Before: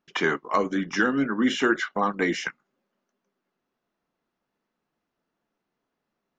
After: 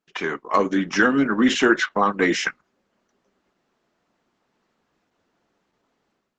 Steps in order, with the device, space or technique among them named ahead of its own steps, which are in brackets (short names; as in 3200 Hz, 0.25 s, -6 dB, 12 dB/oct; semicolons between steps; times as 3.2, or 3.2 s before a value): video call (HPF 130 Hz 6 dB/oct; AGC gain up to 14.5 dB; gain -2.5 dB; Opus 12 kbps 48000 Hz)